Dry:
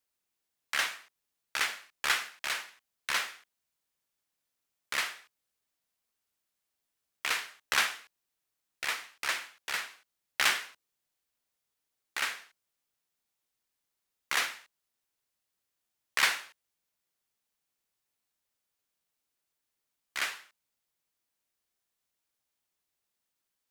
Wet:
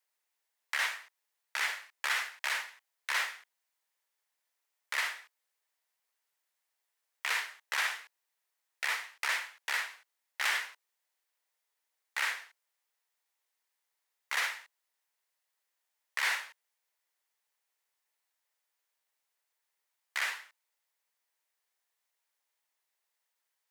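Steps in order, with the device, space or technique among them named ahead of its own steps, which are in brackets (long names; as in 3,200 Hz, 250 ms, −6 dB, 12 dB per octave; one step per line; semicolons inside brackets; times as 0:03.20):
laptop speaker (high-pass filter 430 Hz 24 dB per octave; parametric band 920 Hz +5 dB 0.34 octaves; parametric band 1,900 Hz +6 dB 0.47 octaves; brickwall limiter −20 dBFS, peak gain reduction 12 dB)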